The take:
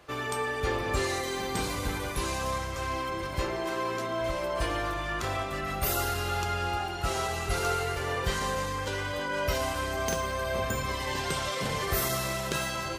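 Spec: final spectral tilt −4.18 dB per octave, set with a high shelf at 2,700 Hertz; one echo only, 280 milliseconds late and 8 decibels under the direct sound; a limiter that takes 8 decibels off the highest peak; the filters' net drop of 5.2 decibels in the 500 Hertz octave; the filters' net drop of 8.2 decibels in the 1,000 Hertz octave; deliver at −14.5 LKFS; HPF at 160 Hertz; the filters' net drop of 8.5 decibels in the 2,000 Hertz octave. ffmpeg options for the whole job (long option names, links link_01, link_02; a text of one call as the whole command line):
ffmpeg -i in.wav -af "highpass=160,equalizer=frequency=500:width_type=o:gain=-4,equalizer=frequency=1000:width_type=o:gain=-6.5,equalizer=frequency=2000:width_type=o:gain=-5,highshelf=frequency=2700:gain=-8.5,alimiter=level_in=5dB:limit=-24dB:level=0:latency=1,volume=-5dB,aecho=1:1:280:0.398,volume=23.5dB" out.wav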